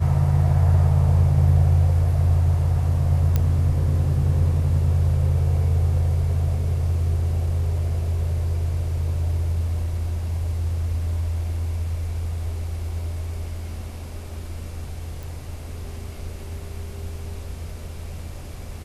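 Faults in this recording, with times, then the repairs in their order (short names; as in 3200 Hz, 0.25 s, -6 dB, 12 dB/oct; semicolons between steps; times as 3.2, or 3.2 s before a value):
3.36 pop -9 dBFS
15.23 pop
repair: de-click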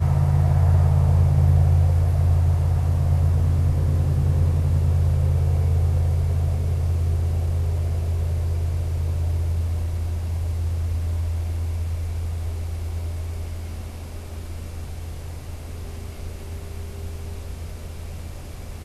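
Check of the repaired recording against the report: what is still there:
none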